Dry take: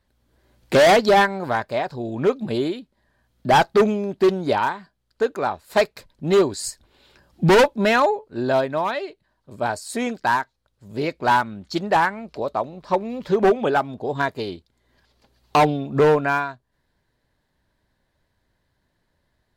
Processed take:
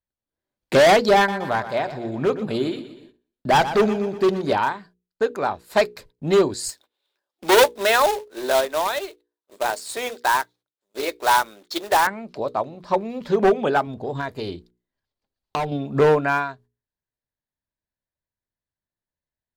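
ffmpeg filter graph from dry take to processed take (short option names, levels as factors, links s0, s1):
-filter_complex "[0:a]asettb=1/sr,asplit=3[s0][s1][s2];[s0]atrim=end=1.164[s3];[s1]atrim=start=1.16:end=4.53,asetpts=PTS-STARTPTS,afade=t=in:d=0.004:c=qsin,afade=t=out:st=3.366:d=0.004:c=qsin,aecho=1:1:121|242|363|484|605:0.224|0.116|0.0605|0.0315|0.0164,atrim=end_sample=148617,volume=4.47,asoftclip=hard,volume=0.224[s4];[s2]atrim=start=4.526[s5];[s3][s4]acrossfade=d=0.004:c1=hsin:c2=qsin[s6];[s6][s5]acrossfade=d=0.004:c1=qsin:c2=hsin,asettb=1/sr,asplit=3[s7][s8][s9];[s7]atrim=end=6.694[s10];[s8]atrim=start=6.69:end=12.07,asetpts=PTS-STARTPTS,afade=t=in:d=0.004:c=qsin,afade=t=out:st=5.376:d=0.004:c=qsin,highpass=f=360:w=0.5412,highpass=f=360:w=1.3066,equalizer=f=3600:w=6.4:g=8,acrusher=bits=2:mode=log:mix=0:aa=0.000001[s11];[s9]atrim=start=12.066[s12];[s10][s11]acrossfade=d=0.004:c1=hsin:c2=qsin[s13];[s13][s12]acrossfade=d=0.004:c1=qsin:c2=hsin,asettb=1/sr,asplit=3[s14][s15][s16];[s14]atrim=end=13.874[s17];[s15]atrim=start=13.87:end=15.72,asetpts=PTS-STARTPTS,afade=t=in:d=0.004:c=qsin,afade=t=out:st=1.846:d=0.004:c=qsin,lowshelf=f=73:g=11,acompressor=threshold=0.0708:ratio=4:attack=3.2:release=140:knee=1:detection=peak[s18];[s16]atrim=start=15.716[s19];[s17][s18]acrossfade=d=0.004:c1=hsin:c2=qsin[s20];[s20][s19]acrossfade=d=0.004:c1=qsin:c2=hsin,agate=range=0.0631:threshold=0.00447:ratio=16:detection=peak,bandreject=f=60:t=h:w=6,bandreject=f=120:t=h:w=6,bandreject=f=180:t=h:w=6,bandreject=f=240:t=h:w=6,bandreject=f=300:t=h:w=6,bandreject=f=360:t=h:w=6,bandreject=f=420:t=h:w=6,bandreject=f=480:t=h:w=6"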